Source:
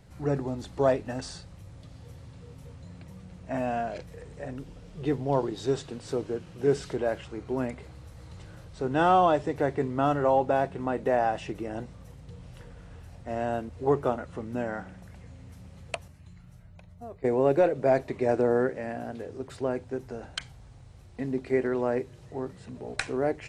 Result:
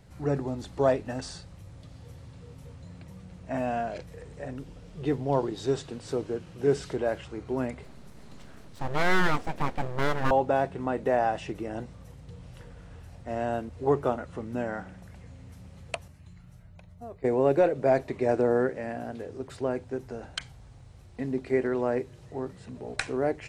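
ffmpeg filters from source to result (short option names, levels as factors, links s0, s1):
-filter_complex "[0:a]asettb=1/sr,asplit=3[s0][s1][s2];[s0]atrim=end=7.844[s3];[s1]atrim=start=7.84:end=10.31,asetpts=PTS-STARTPTS,afade=t=in:d=0.004:c=qsin,afade=t=out:st=2.466:d=0.004:c=qsin,aeval=exprs='abs(val(0))':c=same[s4];[s2]atrim=start=10.306[s5];[s3][s4]acrossfade=d=0.004:c1=hsin:c2=qsin[s6];[s6][s5]acrossfade=d=0.004:c1=qsin:c2=hsin"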